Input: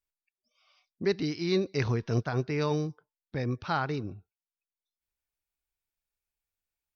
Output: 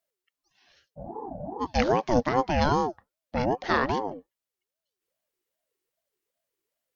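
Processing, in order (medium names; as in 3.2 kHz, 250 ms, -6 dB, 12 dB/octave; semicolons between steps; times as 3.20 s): spectral freeze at 0.99 s, 0.63 s; ring modulator with a swept carrier 510 Hz, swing 30%, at 2.5 Hz; trim +8 dB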